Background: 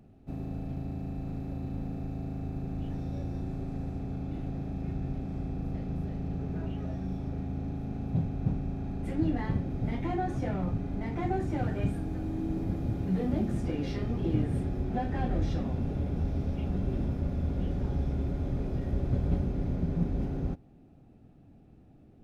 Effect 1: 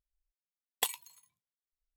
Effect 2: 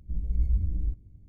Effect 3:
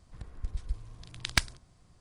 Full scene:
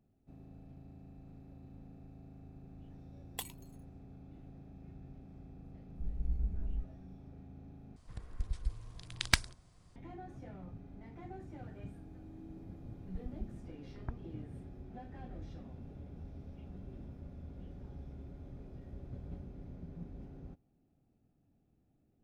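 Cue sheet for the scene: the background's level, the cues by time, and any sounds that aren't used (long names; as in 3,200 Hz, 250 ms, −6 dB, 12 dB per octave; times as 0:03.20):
background −17.5 dB
0:02.56: mix in 1 −10.5 dB
0:05.90: mix in 2 −10.5 dB + comb filter 4.8 ms
0:07.96: overwrite with 3 −1.5 dB
0:12.71: mix in 3 −9 dB + Gaussian smoothing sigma 9 samples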